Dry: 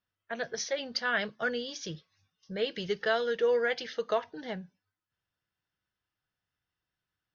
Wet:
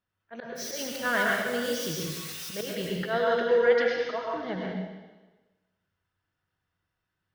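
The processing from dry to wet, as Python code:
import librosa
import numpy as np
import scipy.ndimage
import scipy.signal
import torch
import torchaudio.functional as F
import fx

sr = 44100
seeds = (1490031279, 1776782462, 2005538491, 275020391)

y = fx.crossing_spikes(x, sr, level_db=-28.5, at=(0.55, 2.75))
y = fx.high_shelf(y, sr, hz=3000.0, db=-10.0)
y = fx.auto_swell(y, sr, attack_ms=104.0)
y = fx.rev_plate(y, sr, seeds[0], rt60_s=1.2, hf_ratio=1.0, predelay_ms=90, drr_db=-2.5)
y = y * librosa.db_to_amplitude(3.5)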